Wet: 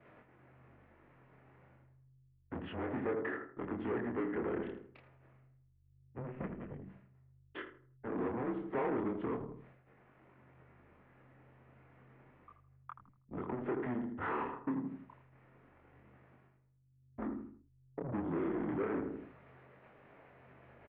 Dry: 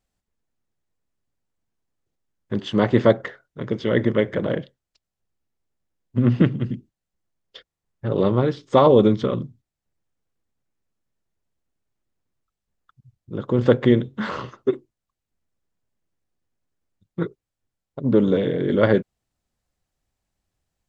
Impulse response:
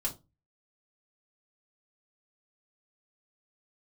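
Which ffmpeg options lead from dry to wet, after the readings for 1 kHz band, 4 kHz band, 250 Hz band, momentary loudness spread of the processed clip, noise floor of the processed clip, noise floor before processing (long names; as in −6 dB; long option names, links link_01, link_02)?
−14.0 dB, below −25 dB, −16.5 dB, 18 LU, −69 dBFS, −85 dBFS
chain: -filter_complex "[0:a]areverse,acompressor=mode=upward:threshold=-24dB:ratio=2.5,areverse,agate=range=-33dB:threshold=-47dB:ratio=3:detection=peak,aeval=exprs='val(0)+0.00562*(sin(2*PI*50*n/s)+sin(2*PI*2*50*n/s)/2+sin(2*PI*3*50*n/s)/3+sin(2*PI*4*50*n/s)/4+sin(2*PI*5*50*n/s)/5)':channel_layout=same,bandreject=frequency=1700:width=25,flanger=delay=22.5:depth=6.2:speed=0.3,asplit=2[link_01][link_02];[link_02]adelay=80,lowpass=frequency=1600:poles=1,volume=-9.5dB,asplit=2[link_03][link_04];[link_04]adelay=80,lowpass=frequency=1600:poles=1,volume=0.39,asplit=2[link_05][link_06];[link_06]adelay=80,lowpass=frequency=1600:poles=1,volume=0.39,asplit=2[link_07][link_08];[link_08]adelay=80,lowpass=frequency=1600:poles=1,volume=0.39[link_09];[link_03][link_05][link_07][link_09]amix=inputs=4:normalize=0[link_10];[link_01][link_10]amix=inputs=2:normalize=0,acompressor=threshold=-28dB:ratio=3,asoftclip=type=tanh:threshold=-31.5dB,highpass=frequency=300:width_type=q:width=0.5412,highpass=frequency=300:width_type=q:width=1.307,lowpass=frequency=2400:width_type=q:width=0.5176,lowpass=frequency=2400:width_type=q:width=0.7071,lowpass=frequency=2400:width_type=q:width=1.932,afreqshift=-120,volume=1dB"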